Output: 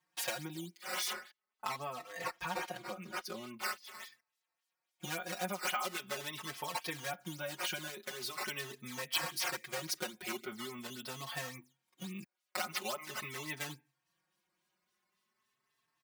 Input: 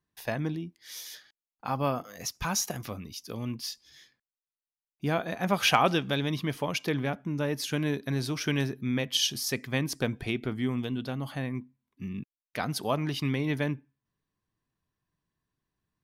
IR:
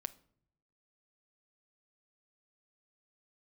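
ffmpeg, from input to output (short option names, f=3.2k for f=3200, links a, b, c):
-filter_complex "[0:a]acrusher=samples=8:mix=1:aa=0.000001:lfo=1:lforange=12.8:lforate=3.6,asettb=1/sr,asplit=3[a][b][c];[a]atrim=end=1.124[d];[b]atrim=start=1.12:end=3.61,asetpts=PTS-STARTPTS,afade=t=in:d=0.004:c=qsin,afade=t=out:st=2.486:d=0.004:c=qsin,highshelf=f=3.7k:g=-10[e];[c]atrim=start=3.606[f];[d][e]acrossfade=d=0.004:c1=hsin:c2=qsin[g];[g][f]acrossfade=d=0.004:c1=qsin:c2=hsin,acompressor=threshold=-40dB:ratio=6,highpass=f=1.1k:p=1,bandreject=f=1.7k:w=26,aecho=1:1:5.5:0.99,asplit=2[h][i];[i]adelay=3.9,afreqshift=0.43[j];[h][j]amix=inputs=2:normalize=1,volume=9.5dB"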